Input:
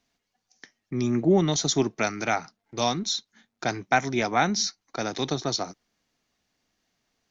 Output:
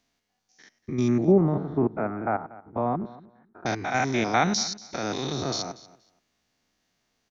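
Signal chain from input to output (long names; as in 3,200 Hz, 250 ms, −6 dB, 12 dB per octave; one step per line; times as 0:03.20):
spectrum averaged block by block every 100 ms
0:01.25–0:03.66: low-pass filter 1,300 Hz 24 dB per octave
repeating echo 237 ms, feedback 18%, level −19.5 dB
level +2.5 dB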